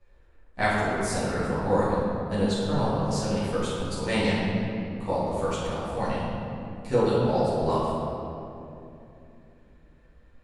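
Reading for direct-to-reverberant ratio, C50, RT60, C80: −12.0 dB, −2.5 dB, 2.8 s, −0.5 dB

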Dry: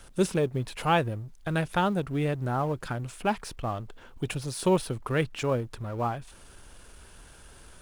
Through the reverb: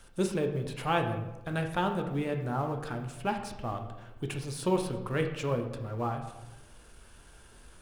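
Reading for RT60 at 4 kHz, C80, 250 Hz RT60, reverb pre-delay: 0.70 s, 10.0 dB, 1.4 s, 9 ms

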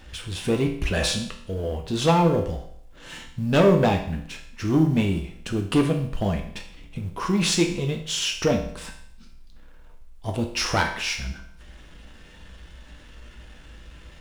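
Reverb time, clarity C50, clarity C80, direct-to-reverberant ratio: 0.65 s, 8.0 dB, 11.0 dB, 2.5 dB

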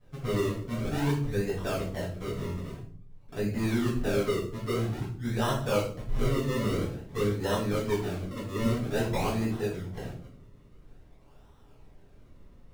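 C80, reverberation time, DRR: 10.0 dB, 0.55 s, −10.0 dB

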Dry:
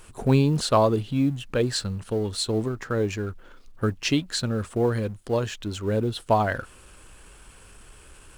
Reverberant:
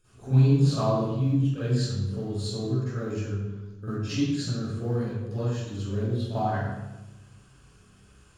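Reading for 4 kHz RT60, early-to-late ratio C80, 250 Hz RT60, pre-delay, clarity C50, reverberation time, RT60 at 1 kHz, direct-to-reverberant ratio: 0.75 s, −1.5 dB, 1.4 s, 40 ms, −7.5 dB, 1.1 s, 0.95 s, −15.5 dB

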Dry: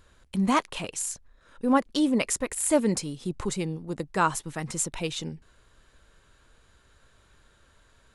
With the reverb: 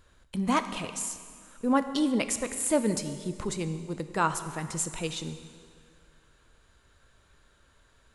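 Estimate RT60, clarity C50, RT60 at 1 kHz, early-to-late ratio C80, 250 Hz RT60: 2.1 s, 11.0 dB, 2.1 s, 12.0 dB, 2.1 s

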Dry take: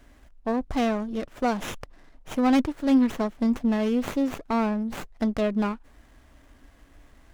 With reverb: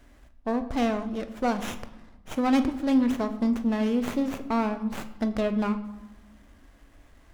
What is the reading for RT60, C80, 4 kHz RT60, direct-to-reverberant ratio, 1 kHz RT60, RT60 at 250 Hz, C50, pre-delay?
1.0 s, 15.0 dB, 0.70 s, 9.0 dB, 1.1 s, 1.6 s, 12.5 dB, 6 ms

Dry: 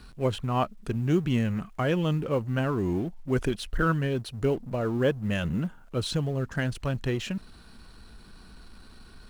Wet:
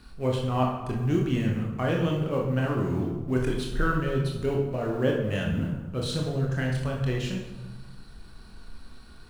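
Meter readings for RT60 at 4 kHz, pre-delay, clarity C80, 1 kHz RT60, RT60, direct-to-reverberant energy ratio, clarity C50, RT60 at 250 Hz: 0.80 s, 24 ms, 6.0 dB, 1.2 s, 1.2 s, −1.0 dB, 3.0 dB, 1.3 s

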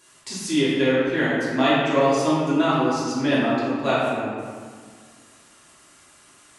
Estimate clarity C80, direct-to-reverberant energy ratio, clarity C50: 0.0 dB, −10.5 dB, −2.5 dB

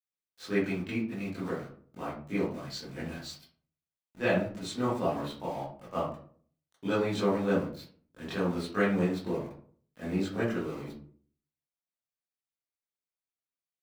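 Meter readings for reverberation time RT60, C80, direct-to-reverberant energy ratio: 0.50 s, 9.0 dB, −12.5 dB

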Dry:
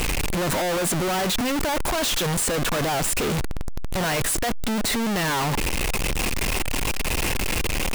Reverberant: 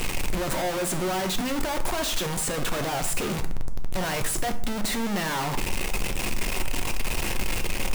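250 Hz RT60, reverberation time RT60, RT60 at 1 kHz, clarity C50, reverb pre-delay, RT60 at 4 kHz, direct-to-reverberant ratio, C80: 0.75 s, 0.60 s, 0.55 s, 12.5 dB, 3 ms, 0.35 s, 6.5 dB, 16.0 dB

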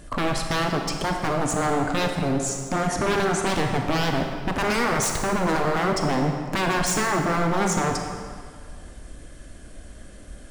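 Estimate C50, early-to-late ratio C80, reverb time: 4.0 dB, 5.5 dB, 2.0 s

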